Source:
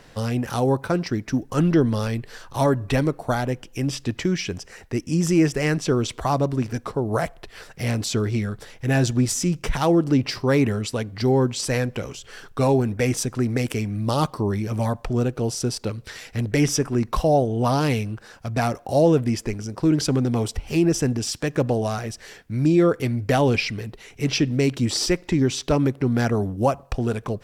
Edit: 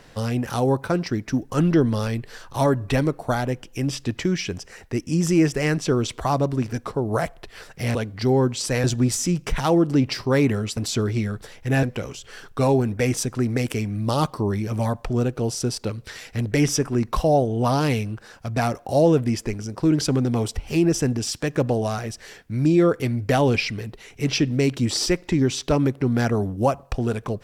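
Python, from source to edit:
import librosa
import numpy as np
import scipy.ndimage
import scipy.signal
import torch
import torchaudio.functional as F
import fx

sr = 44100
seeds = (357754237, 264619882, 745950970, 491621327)

y = fx.edit(x, sr, fx.swap(start_s=7.95, length_s=1.06, other_s=10.94, other_length_s=0.89), tone=tone)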